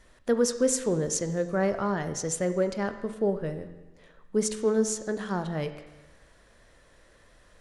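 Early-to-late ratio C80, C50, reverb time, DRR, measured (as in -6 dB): 12.5 dB, 11.0 dB, 1.2 s, 9.5 dB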